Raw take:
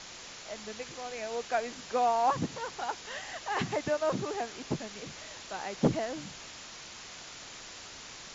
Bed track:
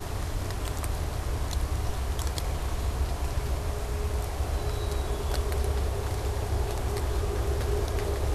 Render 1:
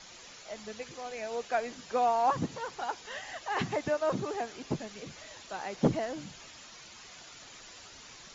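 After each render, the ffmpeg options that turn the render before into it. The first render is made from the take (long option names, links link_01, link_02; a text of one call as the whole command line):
ffmpeg -i in.wav -af "afftdn=noise_reduction=8:noise_floor=-47" out.wav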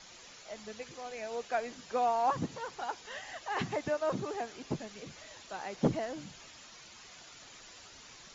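ffmpeg -i in.wav -af "volume=-2.5dB" out.wav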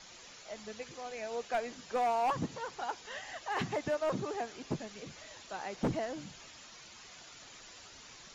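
ffmpeg -i in.wav -af "asoftclip=type=hard:threshold=-26.5dB" out.wav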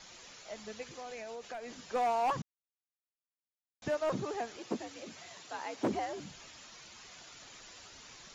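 ffmpeg -i in.wav -filter_complex "[0:a]asettb=1/sr,asplit=3[link_01][link_02][link_03];[link_01]atrim=end=0.904[link_04];[link_02]atrim=start=0.9:end=1.76,asetpts=PTS-STARTPTS,afade=type=in:duration=0.004:curve=qsin,afade=type=out:start_time=0.856:duration=0.004:curve=qsin,acompressor=threshold=-39dB:ratio=10:attack=3.2:release=140:knee=1:detection=peak[link_05];[link_03]atrim=start=1.756[link_06];[link_04][link_05]acrossfade=duration=0.004:curve1=hsin:curve2=qsin[link_07];[link_07][link_06]acrossfade=duration=0.004:curve1=qsin:curve2=hsin,asettb=1/sr,asplit=3[link_08][link_09][link_10];[link_08]atrim=end=4.574[link_11];[link_09]atrim=start=4.57:end=6.2,asetpts=PTS-STARTPTS,afade=type=in:duration=0.004:curve=qsin,afade=type=out:start_time=1.626:duration=0.004:curve=qsin,afreqshift=78[link_12];[link_10]atrim=start=6.196[link_13];[link_11][link_12]acrossfade=duration=0.004:curve1=hsin:curve2=qsin[link_14];[link_14][link_13]acrossfade=duration=0.004:curve1=qsin:curve2=hsin,asplit=3[link_15][link_16][link_17];[link_15]atrim=end=2.42,asetpts=PTS-STARTPTS,afade=type=out:start_time=2.416:duration=0.004:curve=hsin[link_18];[link_16]atrim=start=2.42:end=3.82,asetpts=PTS-STARTPTS,volume=0[link_19];[link_17]atrim=start=3.82,asetpts=PTS-STARTPTS,afade=type=in:duration=0.004:curve=hsin[link_20];[link_18][link_19][link_20]concat=n=3:v=0:a=1" out.wav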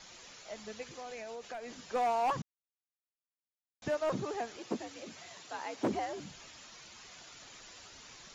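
ffmpeg -i in.wav -af anull out.wav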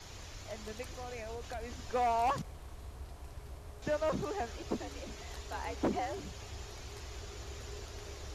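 ffmpeg -i in.wav -i bed.wav -filter_complex "[1:a]volume=-18dB[link_01];[0:a][link_01]amix=inputs=2:normalize=0" out.wav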